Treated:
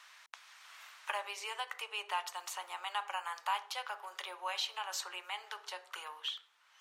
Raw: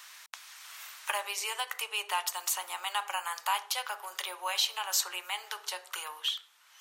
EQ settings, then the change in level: high-pass 240 Hz 12 dB/octave; treble shelf 4.4 kHz -9 dB; treble shelf 12 kHz -12 dB; -3.5 dB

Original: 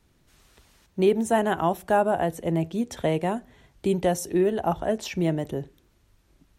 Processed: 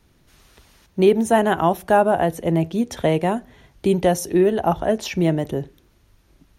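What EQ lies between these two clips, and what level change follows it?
band-stop 7.7 kHz, Q 6.5; +5.5 dB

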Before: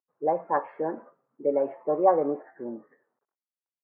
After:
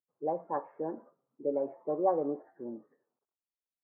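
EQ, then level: low-pass 1.2 kHz 12 dB/octave; bass shelf 190 Hz +6 dB; peaking EQ 320 Hz +2 dB; -8.0 dB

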